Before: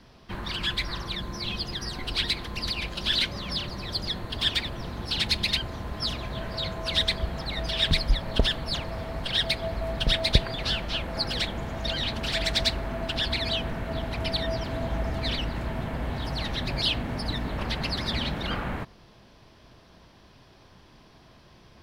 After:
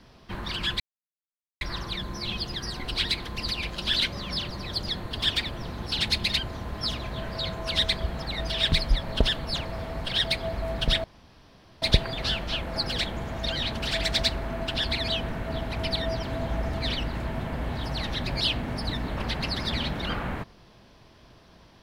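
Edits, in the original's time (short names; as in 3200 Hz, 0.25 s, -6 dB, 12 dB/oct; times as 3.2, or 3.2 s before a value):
0.8 insert silence 0.81 s
10.23 insert room tone 0.78 s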